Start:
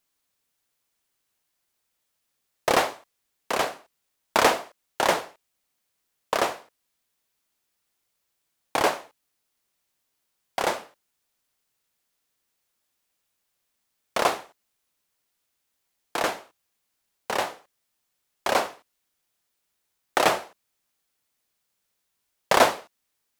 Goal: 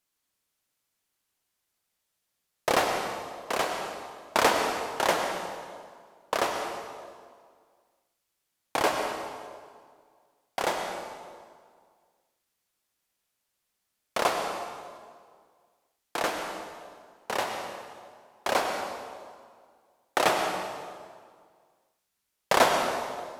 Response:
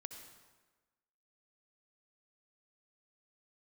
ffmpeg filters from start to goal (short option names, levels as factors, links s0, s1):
-filter_complex "[1:a]atrim=start_sample=2205,asetrate=28665,aresample=44100[s0];[0:a][s0]afir=irnorm=-1:irlink=0"